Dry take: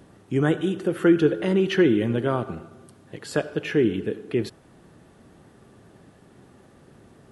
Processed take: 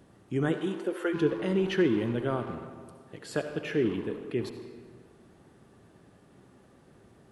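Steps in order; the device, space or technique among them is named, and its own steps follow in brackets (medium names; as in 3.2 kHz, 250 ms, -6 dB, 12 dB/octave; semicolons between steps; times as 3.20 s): saturated reverb return (on a send at -5.5 dB: reverberation RT60 1.6 s, pre-delay 61 ms + saturation -24.5 dBFS, distortion -6 dB); 0.48–1.13 s: on the sum: high-pass 110 Hz -> 450 Hz 24 dB/octave; trim -6.5 dB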